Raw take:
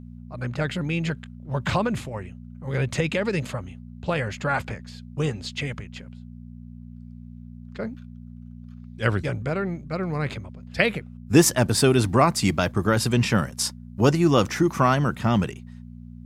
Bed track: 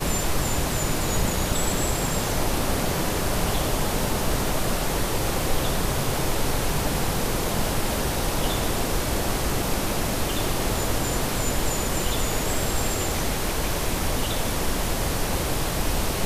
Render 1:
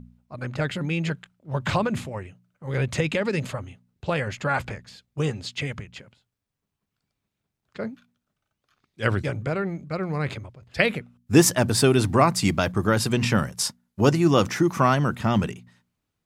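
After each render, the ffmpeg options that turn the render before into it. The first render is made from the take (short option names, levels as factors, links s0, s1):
-af "bandreject=f=60:t=h:w=4,bandreject=f=120:t=h:w=4,bandreject=f=180:t=h:w=4,bandreject=f=240:t=h:w=4"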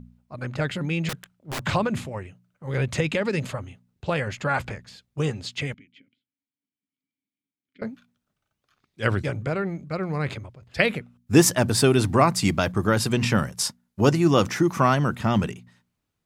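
-filter_complex "[0:a]asettb=1/sr,asplit=3[s0][s1][s2];[s0]atrim=end=1.094[s3];[s1]atrim=start=1.09:end=1.64,asetpts=PTS-STARTPTS,afade=t=in:d=0.004:c=qsin,afade=t=out:st=0.546:d=0.004:c=qsin,aeval=exprs='(mod(18.8*val(0)+1,2)-1)/18.8':c=same[s4];[s2]atrim=start=1.636[s5];[s3][s4]acrossfade=d=0.004:c1=hsin:c2=qsin[s6];[s6][s5]acrossfade=d=0.004:c1=qsin:c2=hsin,asettb=1/sr,asplit=3[s7][s8][s9];[s7]atrim=end=5.744[s10];[s8]atrim=start=5.74:end=7.82,asetpts=PTS-STARTPTS,afade=t=in:d=0.004:c=qsin,afade=t=out:st=2.076:d=0.004:c=qsin,asplit=3[s11][s12][s13];[s11]bandpass=f=270:t=q:w=8,volume=1[s14];[s12]bandpass=f=2290:t=q:w=8,volume=0.501[s15];[s13]bandpass=f=3010:t=q:w=8,volume=0.355[s16];[s14][s15][s16]amix=inputs=3:normalize=0[s17];[s9]atrim=start=7.816[s18];[s10][s17]acrossfade=d=0.004:c1=hsin:c2=qsin[s19];[s19][s18]acrossfade=d=0.004:c1=qsin:c2=hsin"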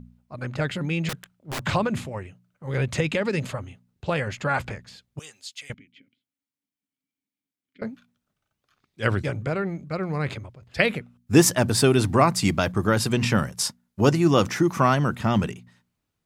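-filter_complex "[0:a]asettb=1/sr,asplit=3[s0][s1][s2];[s0]atrim=end=5.194[s3];[s1]atrim=start=5.19:end=5.7,asetpts=PTS-STARTPTS,afade=t=in:d=0.004:c=qsin,afade=t=out:st=0.506:d=0.004:c=qsin,aderivative[s4];[s2]atrim=start=5.696[s5];[s3][s4]acrossfade=d=0.004:c1=hsin:c2=qsin[s6];[s6][s5]acrossfade=d=0.004:c1=qsin:c2=hsin"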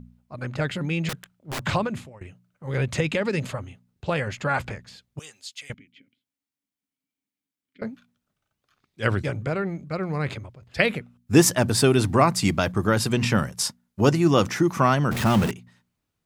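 -filter_complex "[0:a]asettb=1/sr,asplit=3[s0][s1][s2];[s0]atrim=end=15.114[s3];[s1]atrim=start=15.11:end=15.51,asetpts=PTS-STARTPTS,afade=t=in:d=0.004:c=qsin,afade=t=out:st=0.396:d=0.004:c=qsin,aeval=exprs='val(0)+0.5*0.0668*sgn(val(0))':c=same[s4];[s2]atrim=start=15.506[s5];[s3][s4]acrossfade=d=0.004:c1=hsin:c2=qsin[s6];[s6][s5]acrossfade=d=0.004:c1=qsin:c2=hsin,asplit=2[s7][s8];[s7]atrim=end=2.21,asetpts=PTS-STARTPTS,afade=t=out:st=1.73:d=0.48:silence=0.105925[s9];[s8]atrim=start=2.21,asetpts=PTS-STARTPTS,afade=t=in:d=0.004:c=hsin:silence=0.105925[s10];[s9][s10]concat=n=2:v=0:a=1"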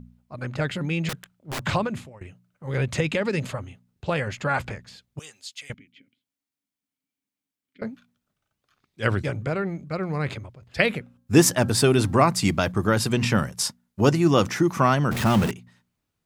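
-filter_complex "[0:a]asettb=1/sr,asplit=3[s0][s1][s2];[s0]atrim=end=10.974[s3];[s1]atrim=start=10.97:end=12.13,asetpts=PTS-STARTPTS,afade=t=in:d=0.004:c=qsin,afade=t=out:st=1.156:d=0.004:c=qsin,bandreject=f=267.1:t=h:w=4,bandreject=f=534.2:t=h:w=4,bandreject=f=801.3:t=h:w=4,bandreject=f=1068.4:t=h:w=4,bandreject=f=1335.5:t=h:w=4,bandreject=f=1602.6:t=h:w=4[s4];[s2]atrim=start=12.126[s5];[s3][s4]acrossfade=d=0.004:c1=hsin:c2=qsin[s6];[s6][s5]acrossfade=d=0.004:c1=qsin:c2=hsin"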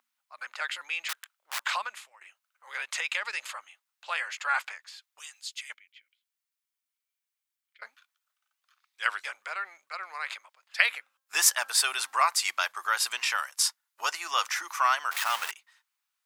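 -af "highpass=f=1000:w=0.5412,highpass=f=1000:w=1.3066,highshelf=f=11000:g=3"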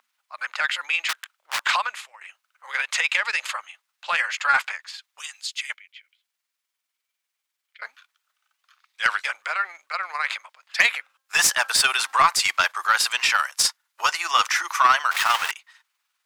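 -filter_complex "[0:a]asplit=2[s0][s1];[s1]highpass=f=720:p=1,volume=7.94,asoftclip=type=tanh:threshold=0.708[s2];[s0][s2]amix=inputs=2:normalize=0,lowpass=f=5100:p=1,volume=0.501,tremolo=f=20:d=0.41"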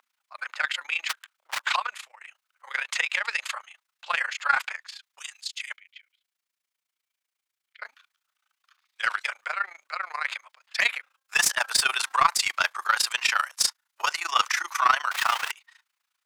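-af "tremolo=f=28:d=0.857"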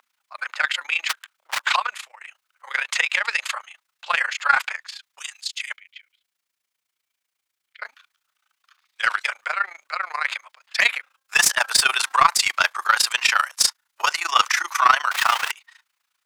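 -af "volume=1.78,alimiter=limit=0.708:level=0:latency=1"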